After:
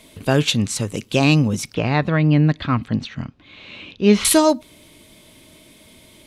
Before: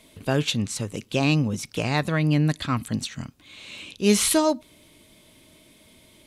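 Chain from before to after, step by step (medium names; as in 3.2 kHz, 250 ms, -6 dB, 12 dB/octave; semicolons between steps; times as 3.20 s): 1.74–4.25 s: distance through air 250 m; trim +6 dB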